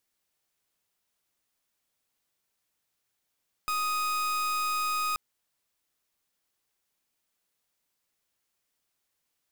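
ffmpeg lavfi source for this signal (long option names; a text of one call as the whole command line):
ffmpeg -f lavfi -i "aevalsrc='0.0355*(2*lt(mod(1250*t,1),0.38)-1)':duration=1.48:sample_rate=44100" out.wav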